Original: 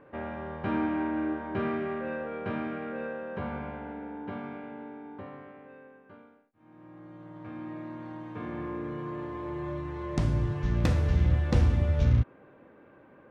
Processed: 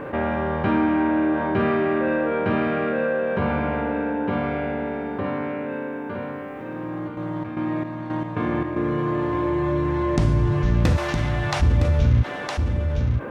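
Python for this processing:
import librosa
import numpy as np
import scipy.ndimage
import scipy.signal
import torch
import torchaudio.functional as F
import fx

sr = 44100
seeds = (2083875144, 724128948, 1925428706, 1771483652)

y = fx.step_gate(x, sr, bpm=113, pattern='xx.xx..x.', floor_db=-12.0, edge_ms=4.5, at=(7.07, 8.91), fade=0.02)
y = fx.steep_highpass(y, sr, hz=590.0, slope=96, at=(10.96, 11.61), fade=0.02)
y = y + 10.0 ** (-9.0 / 20.0) * np.pad(y, (int(962 * sr / 1000.0), 0))[:len(y)]
y = fx.env_flatten(y, sr, amount_pct=50)
y = y * 10.0 ** (4.0 / 20.0)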